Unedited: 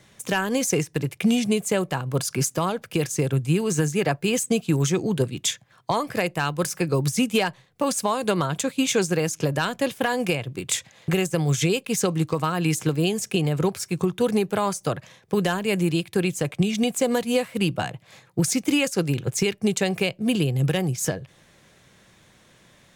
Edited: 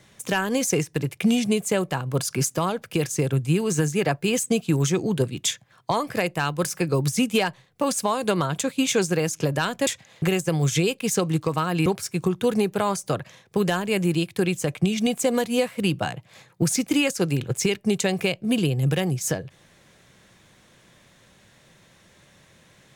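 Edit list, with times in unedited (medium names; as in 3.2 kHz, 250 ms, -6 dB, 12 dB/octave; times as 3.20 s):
9.87–10.73 s: delete
12.72–13.63 s: delete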